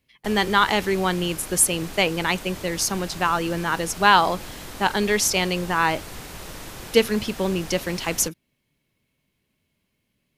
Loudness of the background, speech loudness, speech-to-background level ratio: -37.5 LUFS, -22.0 LUFS, 15.5 dB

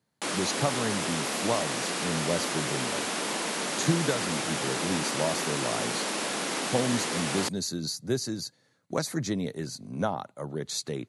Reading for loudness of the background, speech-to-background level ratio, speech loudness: -29.5 LUFS, -3.0 dB, -32.5 LUFS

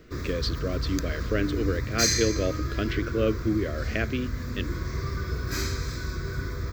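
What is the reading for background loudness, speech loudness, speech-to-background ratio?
-30.5 LUFS, -30.0 LUFS, 0.5 dB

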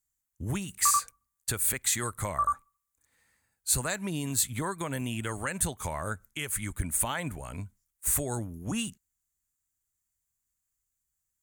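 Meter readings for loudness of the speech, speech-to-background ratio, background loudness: -30.0 LUFS, 1.5 dB, -31.5 LUFS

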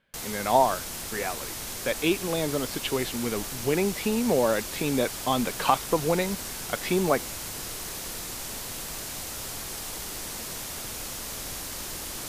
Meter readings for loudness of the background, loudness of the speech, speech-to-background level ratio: -33.5 LUFS, -27.5 LUFS, 6.0 dB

